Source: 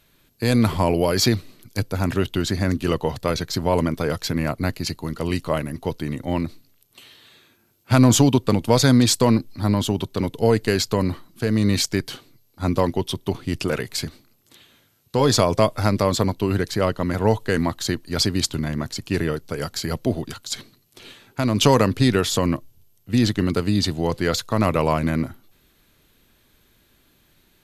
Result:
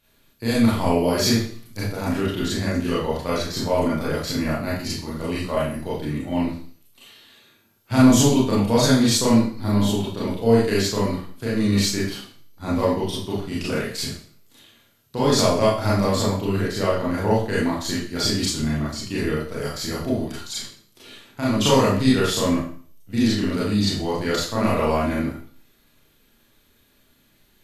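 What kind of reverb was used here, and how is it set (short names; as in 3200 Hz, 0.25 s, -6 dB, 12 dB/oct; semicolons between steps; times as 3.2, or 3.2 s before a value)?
Schroeder reverb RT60 0.47 s, combs from 27 ms, DRR -7.5 dB; gain -8.5 dB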